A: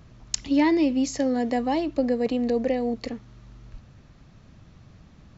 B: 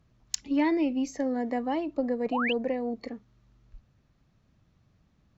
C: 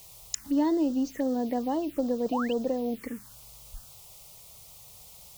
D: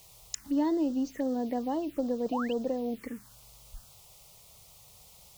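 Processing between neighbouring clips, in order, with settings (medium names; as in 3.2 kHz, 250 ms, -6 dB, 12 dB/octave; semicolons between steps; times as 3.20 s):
Chebyshev shaper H 3 -21 dB, 8 -37 dB, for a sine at -4.5 dBFS; spectral noise reduction 10 dB; painted sound rise, 2.32–2.53 s, 640–3300 Hz -27 dBFS; trim -2.5 dB
in parallel at +2 dB: compression 8:1, threshold -36 dBFS, peak gain reduction 15 dB; on the sum: word length cut 8-bit, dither triangular; touch-sensitive phaser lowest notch 230 Hz, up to 2.3 kHz, full sweep at -22 dBFS; trim -1.5 dB
treble shelf 8 kHz -4.5 dB; trim -2.5 dB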